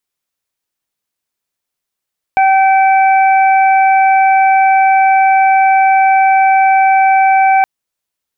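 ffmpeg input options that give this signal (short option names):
-f lavfi -i "aevalsrc='0.473*sin(2*PI*771*t)+0.106*sin(2*PI*1542*t)+0.141*sin(2*PI*2313*t)':d=5.27:s=44100"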